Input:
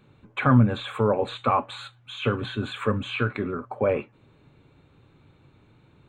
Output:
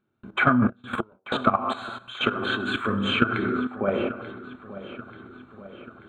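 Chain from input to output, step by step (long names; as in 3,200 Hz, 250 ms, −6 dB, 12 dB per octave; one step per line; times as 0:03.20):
0:03.40–0:03.81: tuned comb filter 250 Hz, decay 0.94 s, mix 70%
dense smooth reverb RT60 0.85 s, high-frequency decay 0.75×, DRR 4 dB
0:00.69–0:01.32: gate with flip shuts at −17 dBFS, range −31 dB
hollow resonant body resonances 240/350/650/3,100 Hz, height 12 dB, ringing for 50 ms
output level in coarse steps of 15 dB
parametric band 1,400 Hz +12.5 dB 0.52 octaves
downward compressor 6 to 1, threshold −21 dBFS, peak gain reduction 11 dB
0:02.13–0:02.74: low-shelf EQ 220 Hz −11.5 dB
feedback echo with a low-pass in the loop 886 ms, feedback 59%, low-pass 4,000 Hz, level −15 dB
noise gate with hold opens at −47 dBFS
level +4.5 dB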